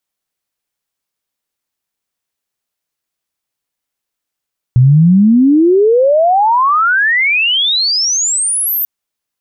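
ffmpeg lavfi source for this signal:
ffmpeg -f lavfi -i "aevalsrc='pow(10,(-3.5-9*t/4.09)/20)*sin(2*PI*120*4.09/log(14000/120)*(exp(log(14000/120)*t/4.09)-1))':duration=4.09:sample_rate=44100" out.wav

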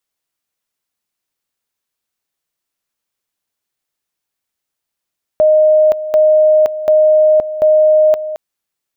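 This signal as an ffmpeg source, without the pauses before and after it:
ffmpeg -f lavfi -i "aevalsrc='pow(10,(-6-13*gte(mod(t,0.74),0.52))/20)*sin(2*PI*618*t)':duration=2.96:sample_rate=44100" out.wav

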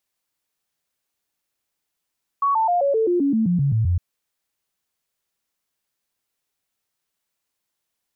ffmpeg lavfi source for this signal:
ffmpeg -f lavfi -i "aevalsrc='0.158*clip(min(mod(t,0.13),0.13-mod(t,0.13))/0.005,0,1)*sin(2*PI*1120*pow(2,-floor(t/0.13)/3)*mod(t,0.13))':duration=1.56:sample_rate=44100" out.wav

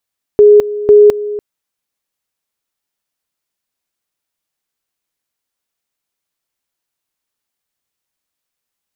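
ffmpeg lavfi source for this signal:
ffmpeg -f lavfi -i "aevalsrc='pow(10,(-1.5-15.5*gte(mod(t,0.5),0.21))/20)*sin(2*PI*416*t)':duration=1:sample_rate=44100" out.wav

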